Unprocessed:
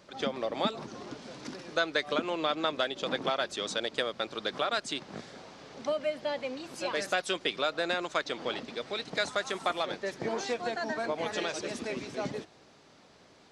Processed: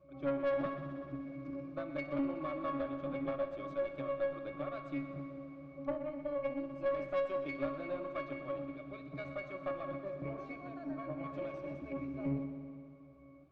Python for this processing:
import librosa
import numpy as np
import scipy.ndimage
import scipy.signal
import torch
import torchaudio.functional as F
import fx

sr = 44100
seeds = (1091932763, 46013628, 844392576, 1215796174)

p1 = fx.high_shelf(x, sr, hz=3300.0, db=-7.0)
p2 = fx.octave_resonator(p1, sr, note='C#', decay_s=0.43)
p3 = fx.tube_stage(p2, sr, drive_db=43.0, bias=0.45)
p4 = p3 + fx.echo_heads(p3, sr, ms=62, heads='first and second', feedback_pct=75, wet_db=-15.0, dry=0)
y = p4 * 10.0 ** (15.0 / 20.0)